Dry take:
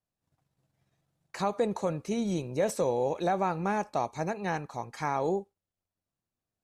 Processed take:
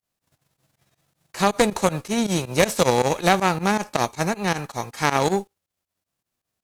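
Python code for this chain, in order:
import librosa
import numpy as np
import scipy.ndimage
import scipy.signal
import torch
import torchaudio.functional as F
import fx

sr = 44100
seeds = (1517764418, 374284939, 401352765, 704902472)

y = fx.envelope_flatten(x, sr, power=0.6)
y = fx.cheby_harmonics(y, sr, harmonics=(4, 6), levels_db=(-7, -11), full_scale_db=-14.0)
y = fx.volume_shaper(y, sr, bpm=159, per_beat=2, depth_db=-18, release_ms=82.0, shape='fast start')
y = F.gain(torch.from_numpy(y), 8.5).numpy()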